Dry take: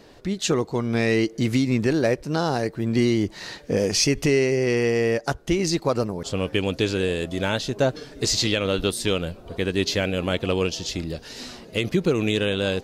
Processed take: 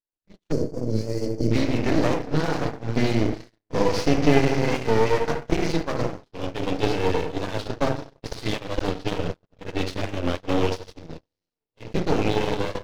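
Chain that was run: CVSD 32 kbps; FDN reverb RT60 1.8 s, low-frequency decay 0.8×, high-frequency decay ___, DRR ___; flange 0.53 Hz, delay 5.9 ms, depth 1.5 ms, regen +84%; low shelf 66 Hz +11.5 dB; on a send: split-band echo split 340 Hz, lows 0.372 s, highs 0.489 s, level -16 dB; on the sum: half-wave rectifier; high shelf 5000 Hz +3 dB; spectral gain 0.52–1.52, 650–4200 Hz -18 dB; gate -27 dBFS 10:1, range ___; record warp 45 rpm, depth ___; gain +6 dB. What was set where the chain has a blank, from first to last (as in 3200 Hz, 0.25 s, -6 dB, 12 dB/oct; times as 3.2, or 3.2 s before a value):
0.35×, 1.5 dB, -54 dB, 100 cents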